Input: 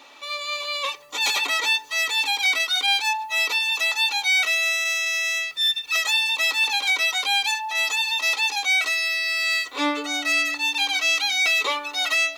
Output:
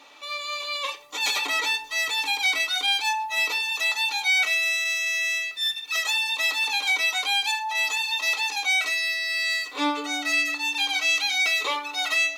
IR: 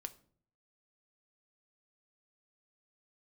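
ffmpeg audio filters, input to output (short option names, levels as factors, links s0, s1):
-filter_complex "[0:a]asettb=1/sr,asplit=3[s0][s1][s2];[s0]atrim=end=1.424[s3];[s1]atrim=start=1.42:end=3.55,asetpts=PTS-STARTPTS,afade=t=in:d=0.004:c=qsin,afade=t=out:st=2.126:d=0.004:c=qsin,lowshelf=f=170:g=9.5[s4];[s2]atrim=start=3.546[s5];[s3][s4]acrossfade=d=0.004:c1=hsin:c2=qsin[s6];[s6][s5]acrossfade=d=0.004:c1=qsin:c2=hsin[s7];[1:a]atrim=start_sample=2205,afade=t=out:st=0.15:d=0.01,atrim=end_sample=7056,asetrate=32634,aresample=44100[s8];[s7][s8]afir=irnorm=-1:irlink=0"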